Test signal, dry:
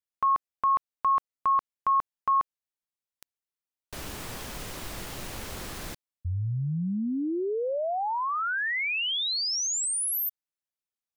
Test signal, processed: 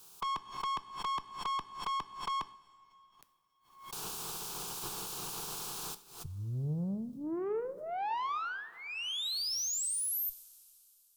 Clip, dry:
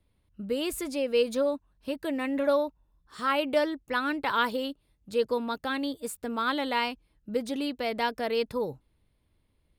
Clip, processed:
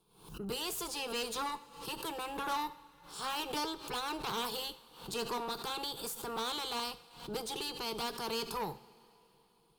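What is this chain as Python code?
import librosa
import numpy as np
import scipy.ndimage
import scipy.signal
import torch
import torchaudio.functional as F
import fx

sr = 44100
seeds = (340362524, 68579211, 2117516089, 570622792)

y = fx.spec_clip(x, sr, under_db=19)
y = fx.fixed_phaser(y, sr, hz=390.0, stages=8)
y = fx.tube_stage(y, sr, drive_db=32.0, bias=0.3)
y = fx.rev_double_slope(y, sr, seeds[0], early_s=0.52, late_s=3.4, knee_db=-15, drr_db=11.5)
y = fx.pre_swell(y, sr, db_per_s=97.0)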